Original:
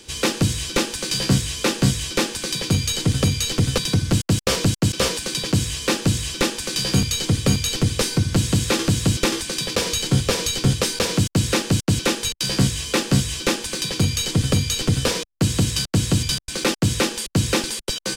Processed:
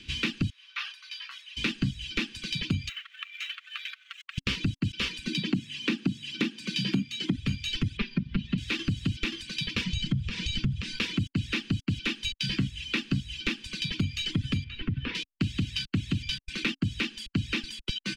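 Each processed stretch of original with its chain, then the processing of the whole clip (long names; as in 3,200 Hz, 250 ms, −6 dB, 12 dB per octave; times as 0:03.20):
0:00.50–0:01.57: four-pole ladder high-pass 1,000 Hz, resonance 55% + parametric band 7,700 Hz −9.5 dB 0.38 octaves + level that may fall only so fast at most 60 dB per second
0:02.89–0:04.38: running median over 9 samples + downward compressor 10 to 1, threshold −19 dBFS + linear-phase brick-wall high-pass 1,100 Hz
0:05.27–0:07.36: high-pass filter 180 Hz 24 dB per octave + low-shelf EQ 440 Hz +11.5 dB
0:07.97–0:08.58: high-frequency loss of the air 230 metres + comb filter 5 ms, depth 96%
0:09.85–0:10.98: low-pass filter 9,300 Hz 24 dB per octave + downward compressor 5 to 1, threshold −21 dBFS + low shelf with overshoot 240 Hz +7.5 dB, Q 1.5
0:14.64–0:15.15: low-pass filter 2,200 Hz + downward compressor 2 to 1, threshold −22 dBFS
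whole clip: reverb reduction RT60 1.7 s; drawn EQ curve 270 Hz 0 dB, 620 Hz −28 dB, 980 Hz −14 dB, 2,700 Hz +4 dB, 8,500 Hz −21 dB, 12,000 Hz −23 dB; downward compressor 6 to 1, threshold −25 dBFS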